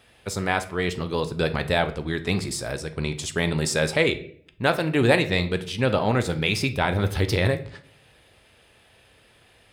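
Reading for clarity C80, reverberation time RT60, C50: 18.0 dB, 0.55 s, 14.0 dB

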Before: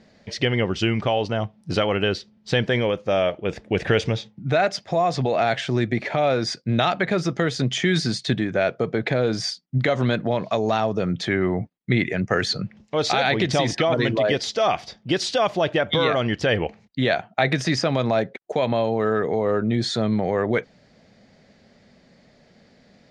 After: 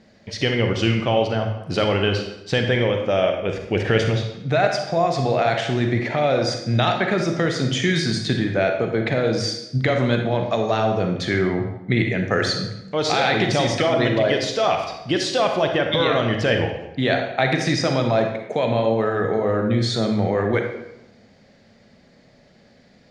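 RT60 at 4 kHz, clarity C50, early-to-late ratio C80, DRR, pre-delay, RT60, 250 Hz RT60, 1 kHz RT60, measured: 0.70 s, 5.0 dB, 7.5 dB, 3.5 dB, 34 ms, 0.90 s, 1.0 s, 0.85 s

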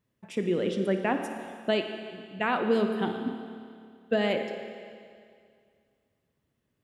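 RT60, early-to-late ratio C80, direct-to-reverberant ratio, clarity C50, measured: 2.2 s, 7.0 dB, 5.5 dB, 6.0 dB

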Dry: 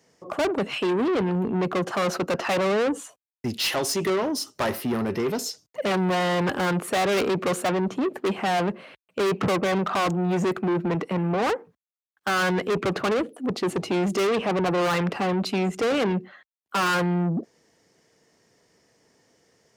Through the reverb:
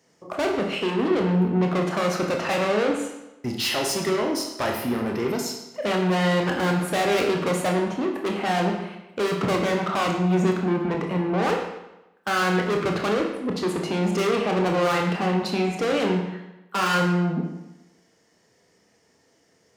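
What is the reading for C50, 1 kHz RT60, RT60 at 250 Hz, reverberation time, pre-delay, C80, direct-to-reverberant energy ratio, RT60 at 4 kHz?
4.5 dB, 0.95 s, 0.95 s, 0.95 s, 25 ms, 7.0 dB, 1.0 dB, 0.85 s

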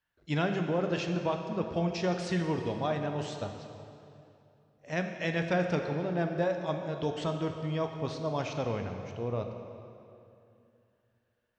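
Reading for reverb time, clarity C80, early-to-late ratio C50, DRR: 2.7 s, 6.5 dB, 5.5 dB, 4.5 dB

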